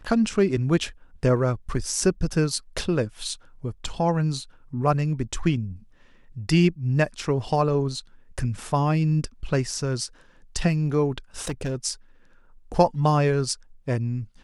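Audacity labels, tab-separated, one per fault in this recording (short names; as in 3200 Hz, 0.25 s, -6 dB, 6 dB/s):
11.400000	11.760000	clipped -23.5 dBFS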